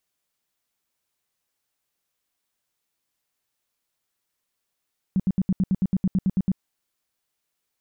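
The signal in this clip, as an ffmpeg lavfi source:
-f lavfi -i "aevalsrc='0.141*sin(2*PI*189*mod(t,0.11))*lt(mod(t,0.11),7/189)':d=1.43:s=44100"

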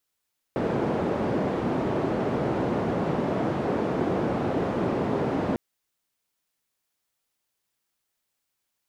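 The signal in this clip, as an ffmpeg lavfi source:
-f lavfi -i "anoisesrc=c=white:d=5:r=44100:seed=1,highpass=f=130,lowpass=f=470,volume=-3.6dB"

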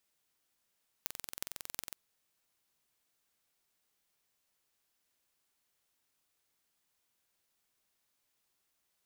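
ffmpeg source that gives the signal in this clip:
-f lavfi -i "aevalsrc='0.398*eq(mod(n,2014),0)*(0.5+0.5*eq(mod(n,16112),0))':d=0.9:s=44100"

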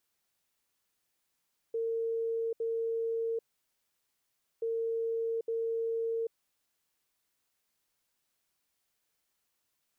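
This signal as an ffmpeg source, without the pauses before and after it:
-f lavfi -i "aevalsrc='0.0335*sin(2*PI*456*t)*clip(min(mod(mod(t,2.88),0.86),0.79-mod(mod(t,2.88),0.86))/0.005,0,1)*lt(mod(t,2.88),1.72)':d=5.76:s=44100"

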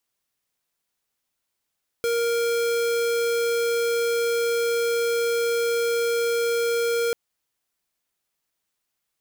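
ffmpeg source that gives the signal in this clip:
-f lavfi -i "aevalsrc='0.0708*(2*lt(mod(468*t,1),0.5)-1)':d=5.09:s=44100"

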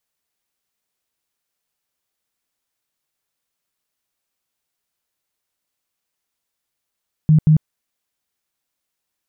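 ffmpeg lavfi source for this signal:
-f lavfi -i "aevalsrc='0.398*sin(2*PI*155*mod(t,0.18))*lt(mod(t,0.18),15/155)':d=0.36:s=44100"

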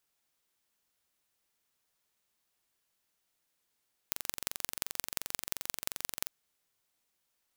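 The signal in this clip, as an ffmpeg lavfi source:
-f lavfi -i "aevalsrc='0.668*eq(mod(n,1934),0)*(0.5+0.5*eq(mod(n,7736),0))':d=2.16:s=44100"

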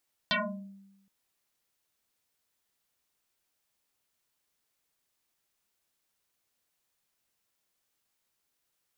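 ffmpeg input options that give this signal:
-f lavfi -i "aevalsrc='0.0708*pow(10,-3*t/1.04)*sin(2*PI*196*t+11*pow(10,-3*t/0.53)*sin(2*PI*2.13*196*t))':d=0.77:s=44100"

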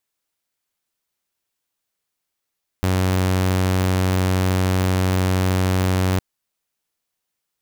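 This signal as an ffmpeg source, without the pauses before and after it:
-f lavfi -i "aevalsrc='0.2*(2*mod(93*t,1)-1)':d=3.36:s=44100"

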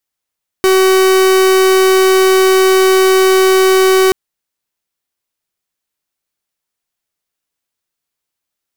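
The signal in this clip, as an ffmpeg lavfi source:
-f lavfi -i "aevalsrc='0.355*(2*lt(mod(378*t,1),0.44)-1)':d=3.48:s=44100"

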